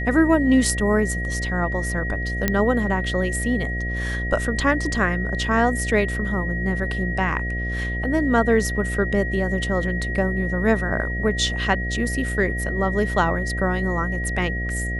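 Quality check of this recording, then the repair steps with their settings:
mains buzz 60 Hz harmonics 12 −27 dBFS
whistle 1,900 Hz −28 dBFS
0:02.48: click −5 dBFS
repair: click removal
notch filter 1,900 Hz, Q 30
hum removal 60 Hz, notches 12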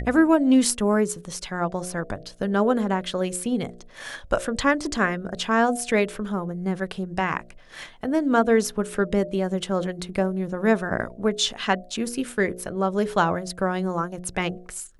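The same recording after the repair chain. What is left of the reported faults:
none of them is left

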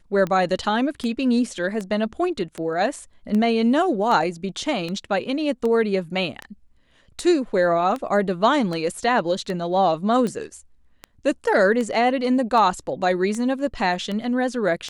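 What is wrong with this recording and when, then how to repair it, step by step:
scratch tick 78 rpm −16 dBFS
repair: click removal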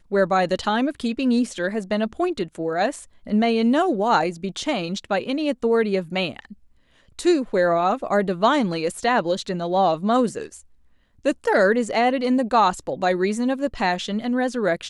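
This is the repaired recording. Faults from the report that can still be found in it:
none of them is left

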